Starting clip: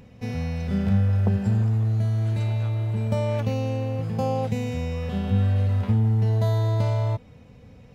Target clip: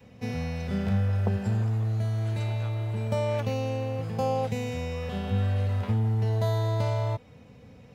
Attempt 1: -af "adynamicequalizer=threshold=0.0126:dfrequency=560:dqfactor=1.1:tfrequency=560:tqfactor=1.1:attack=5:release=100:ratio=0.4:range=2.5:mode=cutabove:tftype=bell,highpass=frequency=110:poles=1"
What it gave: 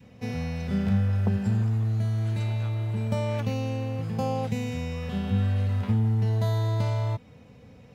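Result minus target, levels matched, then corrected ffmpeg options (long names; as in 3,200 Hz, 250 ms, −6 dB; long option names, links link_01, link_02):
500 Hz band −4.5 dB
-af "adynamicequalizer=threshold=0.0126:dfrequency=200:dqfactor=1.1:tfrequency=200:tqfactor=1.1:attack=5:release=100:ratio=0.4:range=2.5:mode=cutabove:tftype=bell,highpass=frequency=110:poles=1"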